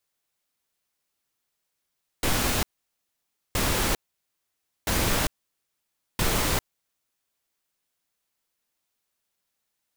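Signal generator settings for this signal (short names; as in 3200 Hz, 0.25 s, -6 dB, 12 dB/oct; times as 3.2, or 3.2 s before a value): noise bursts pink, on 0.40 s, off 0.92 s, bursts 4, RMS -24 dBFS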